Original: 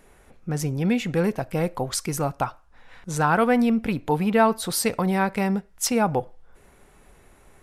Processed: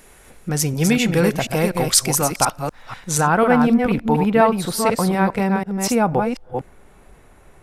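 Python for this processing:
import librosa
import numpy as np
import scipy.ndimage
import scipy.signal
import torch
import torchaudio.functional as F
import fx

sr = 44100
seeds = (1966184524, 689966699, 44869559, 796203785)

y = fx.reverse_delay(x, sr, ms=245, wet_db=-4.5)
y = fx.high_shelf(y, sr, hz=2400.0, db=fx.steps((0.0, 9.5), (3.19, -5.0)))
y = fx.quant_float(y, sr, bits=8)
y = y * 10.0 ** (4.0 / 20.0)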